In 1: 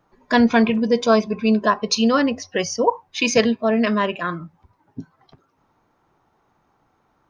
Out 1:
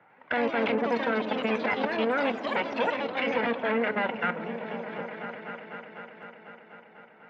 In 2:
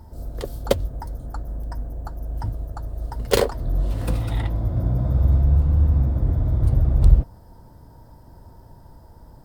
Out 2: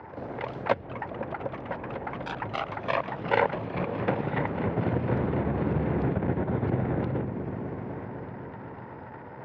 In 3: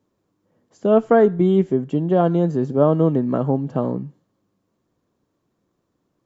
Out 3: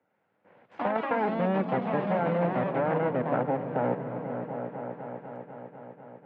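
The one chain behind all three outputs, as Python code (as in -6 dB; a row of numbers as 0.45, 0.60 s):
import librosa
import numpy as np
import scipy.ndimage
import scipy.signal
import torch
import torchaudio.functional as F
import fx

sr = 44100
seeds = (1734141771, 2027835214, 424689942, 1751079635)

y = fx.lower_of_two(x, sr, delay_ms=1.4)
y = fx.low_shelf(y, sr, hz=400.0, db=-10.0)
y = fx.level_steps(y, sr, step_db=15)
y = fx.cabinet(y, sr, low_hz=140.0, low_slope=24, high_hz=2100.0, hz=(150.0, 230.0, 660.0, 1200.0), db=(-8, -4, -9, -9))
y = fx.echo_opening(y, sr, ms=249, hz=200, octaves=1, feedback_pct=70, wet_db=-6)
y = fx.echo_pitch(y, sr, ms=97, semitones=3, count=3, db_per_echo=-6.0)
y = fx.band_squash(y, sr, depth_pct=40)
y = y * 10.0 ** (-30 / 20.0) / np.sqrt(np.mean(np.square(y)))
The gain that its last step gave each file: +8.0, +16.0, +7.5 dB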